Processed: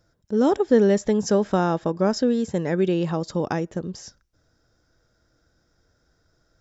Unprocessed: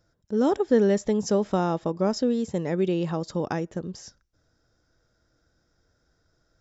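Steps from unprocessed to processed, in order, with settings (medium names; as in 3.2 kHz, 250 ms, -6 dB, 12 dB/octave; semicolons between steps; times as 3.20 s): 1.02–3.04 s: peaking EQ 1.6 kHz +7.5 dB 0.25 oct; trim +3 dB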